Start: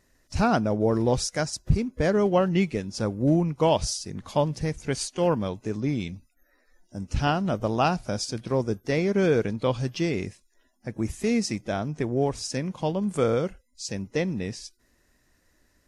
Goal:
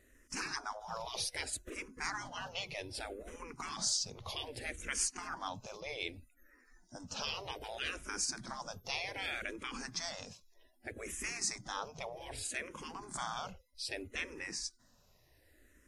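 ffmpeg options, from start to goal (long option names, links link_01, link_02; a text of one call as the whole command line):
ffmpeg -i in.wav -filter_complex "[0:a]afftfilt=real='re*lt(hypot(re,im),0.0794)':imag='im*lt(hypot(re,im),0.0794)':win_size=1024:overlap=0.75,asplit=2[link_01][link_02];[link_02]afreqshift=-0.64[link_03];[link_01][link_03]amix=inputs=2:normalize=1,volume=2dB" out.wav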